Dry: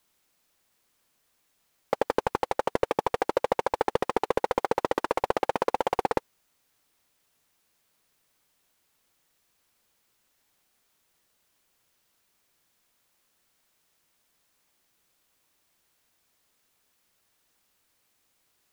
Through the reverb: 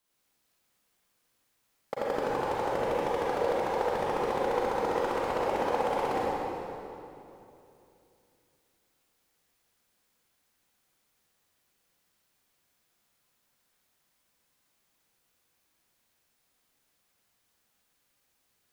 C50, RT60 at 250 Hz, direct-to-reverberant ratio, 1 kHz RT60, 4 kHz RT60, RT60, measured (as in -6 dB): -5.0 dB, 3.2 s, -7.0 dB, 2.7 s, 2.3 s, 2.9 s